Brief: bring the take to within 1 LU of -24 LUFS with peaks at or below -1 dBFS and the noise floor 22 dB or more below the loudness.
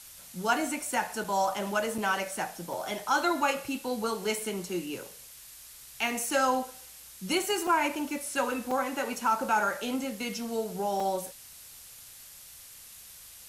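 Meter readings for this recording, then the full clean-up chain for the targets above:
dropouts 6; longest dropout 3.8 ms; noise floor -49 dBFS; noise floor target -52 dBFS; loudness -30.0 LUFS; peak -13.0 dBFS; loudness target -24.0 LUFS
-> interpolate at 1.24/1.98/2.73/7.67/8.71/11, 3.8 ms; denoiser 6 dB, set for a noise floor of -49 dBFS; gain +6 dB

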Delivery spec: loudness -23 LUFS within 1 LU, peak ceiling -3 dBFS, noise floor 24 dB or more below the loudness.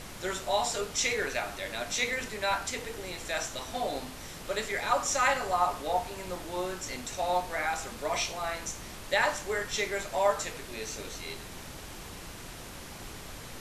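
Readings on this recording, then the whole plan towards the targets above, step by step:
noise floor -44 dBFS; noise floor target -56 dBFS; loudness -31.5 LUFS; peak -13.0 dBFS; loudness target -23.0 LUFS
-> noise print and reduce 12 dB; gain +8.5 dB

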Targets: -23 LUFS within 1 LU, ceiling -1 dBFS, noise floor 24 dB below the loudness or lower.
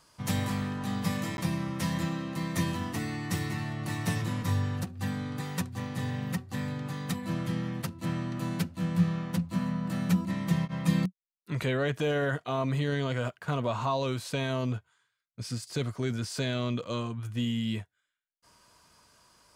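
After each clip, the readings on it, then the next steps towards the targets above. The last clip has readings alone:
dropouts 1; longest dropout 11 ms; loudness -31.5 LUFS; peak -14.0 dBFS; loudness target -23.0 LUFS
-> interpolate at 1.37, 11 ms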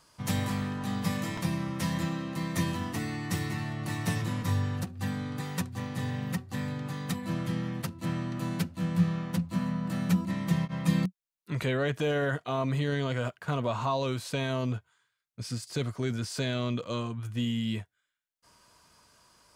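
dropouts 0; loudness -31.5 LUFS; peak -14.0 dBFS; loudness target -23.0 LUFS
-> gain +8.5 dB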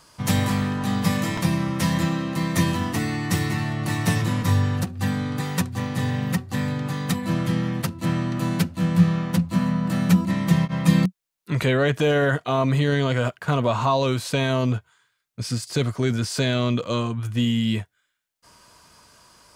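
loudness -23.0 LUFS; peak -5.5 dBFS; noise floor -72 dBFS

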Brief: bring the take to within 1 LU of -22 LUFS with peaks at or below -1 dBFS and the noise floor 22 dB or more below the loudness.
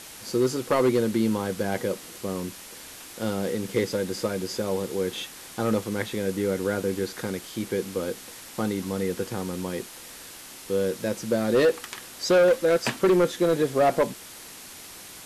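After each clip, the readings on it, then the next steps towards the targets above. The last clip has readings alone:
clipped 1.3%; flat tops at -15.0 dBFS; noise floor -44 dBFS; noise floor target -48 dBFS; loudness -26.0 LUFS; peak -15.0 dBFS; loudness target -22.0 LUFS
-> clip repair -15 dBFS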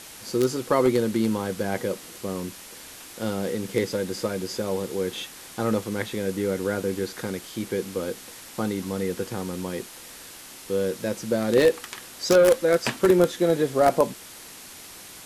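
clipped 0.0%; noise floor -44 dBFS; noise floor target -47 dBFS
-> denoiser 6 dB, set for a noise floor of -44 dBFS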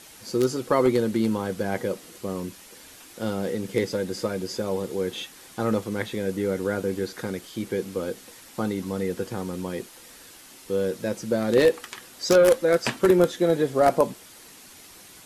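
noise floor -48 dBFS; loudness -25.0 LUFS; peak -6.0 dBFS; loudness target -22.0 LUFS
-> gain +3 dB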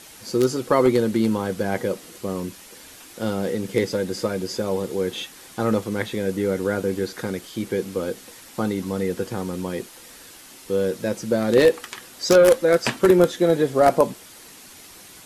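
loudness -22.0 LUFS; peak -3.0 dBFS; noise floor -45 dBFS

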